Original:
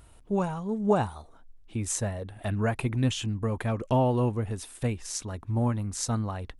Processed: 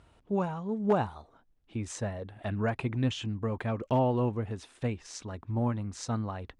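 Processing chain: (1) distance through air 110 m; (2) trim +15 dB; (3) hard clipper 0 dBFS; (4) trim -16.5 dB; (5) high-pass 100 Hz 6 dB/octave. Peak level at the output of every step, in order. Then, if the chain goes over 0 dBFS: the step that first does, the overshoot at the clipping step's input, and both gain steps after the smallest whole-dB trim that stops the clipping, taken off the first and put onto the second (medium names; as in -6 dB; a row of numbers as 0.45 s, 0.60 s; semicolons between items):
-12.0 dBFS, +3.0 dBFS, 0.0 dBFS, -16.5 dBFS, -15.0 dBFS; step 2, 3.0 dB; step 2 +12 dB, step 4 -13.5 dB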